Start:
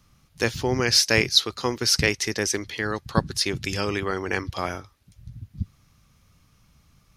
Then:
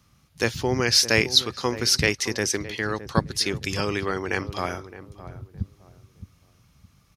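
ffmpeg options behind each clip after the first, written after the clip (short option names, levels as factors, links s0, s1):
-filter_complex "[0:a]highpass=49,asplit=2[s0][s1];[s1]adelay=615,lowpass=f=910:p=1,volume=0.237,asplit=2[s2][s3];[s3]adelay=615,lowpass=f=910:p=1,volume=0.3,asplit=2[s4][s5];[s5]adelay=615,lowpass=f=910:p=1,volume=0.3[s6];[s0][s2][s4][s6]amix=inputs=4:normalize=0"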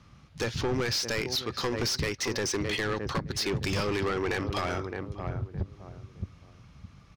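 -af "acompressor=threshold=0.0501:ratio=8,asoftclip=type=hard:threshold=0.0282,adynamicsmooth=sensitivity=7:basefreq=4500,volume=2.11"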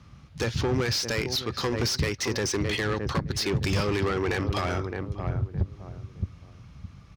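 -af "highpass=45,lowshelf=f=140:g=7,volume=1.19"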